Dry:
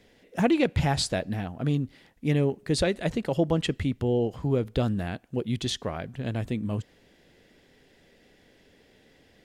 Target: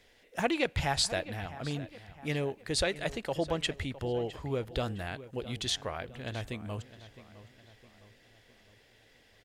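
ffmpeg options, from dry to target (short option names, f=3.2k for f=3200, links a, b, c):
-filter_complex "[0:a]equalizer=f=200:w=0.53:g=-12.5,asplit=2[a][b];[b]adelay=660,lowpass=f=3.9k:p=1,volume=-15.5dB,asplit=2[c][d];[d]adelay=660,lowpass=f=3.9k:p=1,volume=0.49,asplit=2[e][f];[f]adelay=660,lowpass=f=3.9k:p=1,volume=0.49,asplit=2[g][h];[h]adelay=660,lowpass=f=3.9k:p=1,volume=0.49[i];[c][e][g][i]amix=inputs=4:normalize=0[j];[a][j]amix=inputs=2:normalize=0"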